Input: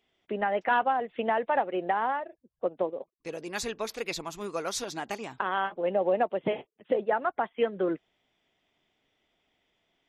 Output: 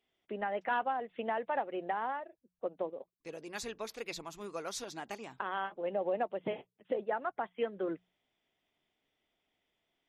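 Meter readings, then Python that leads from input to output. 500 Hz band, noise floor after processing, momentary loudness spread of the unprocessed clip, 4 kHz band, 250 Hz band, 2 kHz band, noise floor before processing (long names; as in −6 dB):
−7.5 dB, −84 dBFS, 10 LU, −7.5 dB, −7.5 dB, −7.5 dB, −80 dBFS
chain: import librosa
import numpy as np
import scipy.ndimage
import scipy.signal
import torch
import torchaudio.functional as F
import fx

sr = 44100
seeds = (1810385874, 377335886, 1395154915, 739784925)

y = fx.hum_notches(x, sr, base_hz=60, count=3)
y = y * 10.0 ** (-7.5 / 20.0)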